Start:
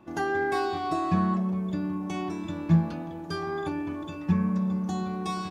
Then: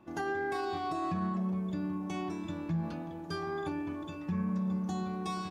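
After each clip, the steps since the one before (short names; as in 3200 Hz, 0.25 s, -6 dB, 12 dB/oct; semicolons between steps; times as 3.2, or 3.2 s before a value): limiter -21 dBFS, peak gain reduction 10 dB; gain -4.5 dB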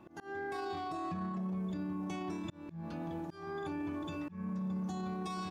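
auto swell 0.423 s; limiter -34 dBFS, peak gain reduction 8.5 dB; gain +2.5 dB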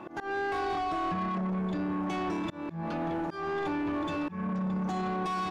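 overdrive pedal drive 18 dB, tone 1600 Hz, clips at -31 dBFS; gain +6.5 dB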